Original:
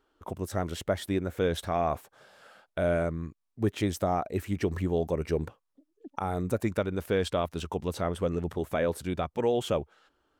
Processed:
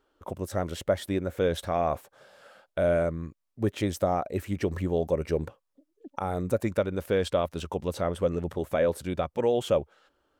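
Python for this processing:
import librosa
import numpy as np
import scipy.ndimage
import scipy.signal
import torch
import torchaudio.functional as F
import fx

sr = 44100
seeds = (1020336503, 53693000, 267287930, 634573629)

y = fx.peak_eq(x, sr, hz=550.0, db=7.0, octaves=0.25)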